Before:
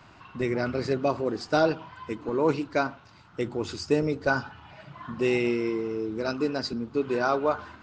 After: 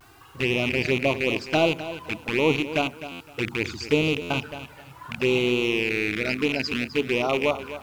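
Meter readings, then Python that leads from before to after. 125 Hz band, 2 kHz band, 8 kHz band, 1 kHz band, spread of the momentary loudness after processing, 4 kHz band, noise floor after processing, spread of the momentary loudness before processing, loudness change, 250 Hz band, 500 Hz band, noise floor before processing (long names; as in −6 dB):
+3.5 dB, +7.0 dB, +5.0 dB, −1.0 dB, 10 LU, +10.0 dB, −49 dBFS, 13 LU, +3.5 dB, +2.0 dB, +1.5 dB, −53 dBFS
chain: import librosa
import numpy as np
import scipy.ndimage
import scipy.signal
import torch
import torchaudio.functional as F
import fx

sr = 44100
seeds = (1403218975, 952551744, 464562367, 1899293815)

p1 = fx.rattle_buzz(x, sr, strikes_db=-34.0, level_db=-15.0)
p2 = fx.quant_dither(p1, sr, seeds[0], bits=10, dither='triangular')
p3 = fx.env_flanger(p2, sr, rest_ms=2.8, full_db=-20.5)
p4 = fx.vibrato(p3, sr, rate_hz=0.77, depth_cents=51.0)
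p5 = p4 + fx.echo_feedback(p4, sr, ms=257, feedback_pct=24, wet_db=-13, dry=0)
p6 = fx.buffer_glitch(p5, sr, at_s=(3.11, 4.21), block=512, repeats=7)
y = p6 * librosa.db_to_amplitude(3.0)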